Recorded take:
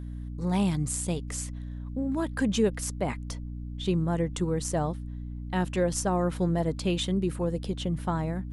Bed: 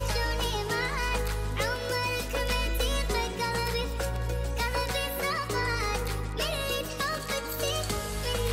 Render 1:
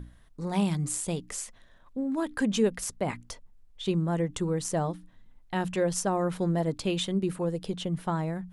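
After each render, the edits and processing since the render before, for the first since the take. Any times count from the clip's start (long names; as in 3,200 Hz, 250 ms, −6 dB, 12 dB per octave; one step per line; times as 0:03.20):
mains-hum notches 60/120/180/240/300 Hz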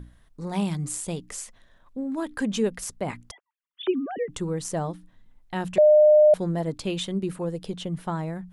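0:03.31–0:04.29: three sine waves on the formant tracks
0:05.78–0:06.34: beep over 606 Hz −11.5 dBFS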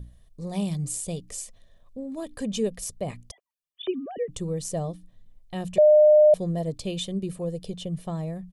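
parametric band 1,400 Hz −14 dB 1.3 octaves
comb filter 1.7 ms, depth 46%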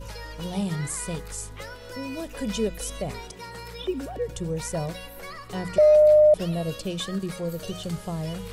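mix in bed −10 dB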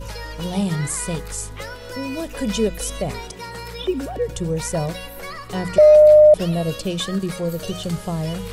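level +6 dB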